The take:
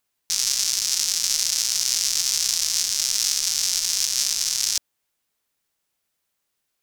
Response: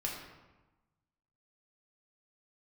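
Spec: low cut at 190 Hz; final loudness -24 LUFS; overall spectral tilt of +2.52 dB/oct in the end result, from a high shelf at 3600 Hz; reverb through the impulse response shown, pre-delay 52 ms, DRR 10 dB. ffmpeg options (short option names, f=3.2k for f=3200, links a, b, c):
-filter_complex "[0:a]highpass=190,highshelf=f=3.6k:g=-3.5,asplit=2[a][b];[1:a]atrim=start_sample=2205,adelay=52[c];[b][c]afir=irnorm=-1:irlink=0,volume=-12.5dB[d];[a][d]amix=inputs=2:normalize=0,volume=-1.5dB"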